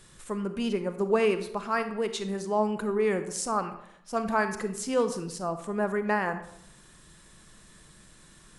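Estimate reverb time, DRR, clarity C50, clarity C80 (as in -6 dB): 0.75 s, 9.0 dB, 10.5 dB, 13.0 dB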